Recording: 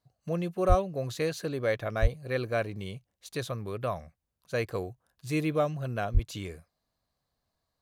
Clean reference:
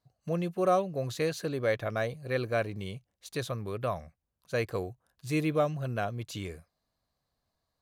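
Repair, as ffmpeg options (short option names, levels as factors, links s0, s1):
-filter_complex "[0:a]asplit=3[s0][s1][s2];[s0]afade=t=out:st=0.68:d=0.02[s3];[s1]highpass=f=140:w=0.5412,highpass=f=140:w=1.3066,afade=t=in:st=0.68:d=0.02,afade=t=out:st=0.8:d=0.02[s4];[s2]afade=t=in:st=0.8:d=0.02[s5];[s3][s4][s5]amix=inputs=3:normalize=0,asplit=3[s6][s7][s8];[s6]afade=t=out:st=2.01:d=0.02[s9];[s7]highpass=f=140:w=0.5412,highpass=f=140:w=1.3066,afade=t=in:st=2.01:d=0.02,afade=t=out:st=2.13:d=0.02[s10];[s8]afade=t=in:st=2.13:d=0.02[s11];[s9][s10][s11]amix=inputs=3:normalize=0,asplit=3[s12][s13][s14];[s12]afade=t=out:st=6.13:d=0.02[s15];[s13]highpass=f=140:w=0.5412,highpass=f=140:w=1.3066,afade=t=in:st=6.13:d=0.02,afade=t=out:st=6.25:d=0.02[s16];[s14]afade=t=in:st=6.25:d=0.02[s17];[s15][s16][s17]amix=inputs=3:normalize=0"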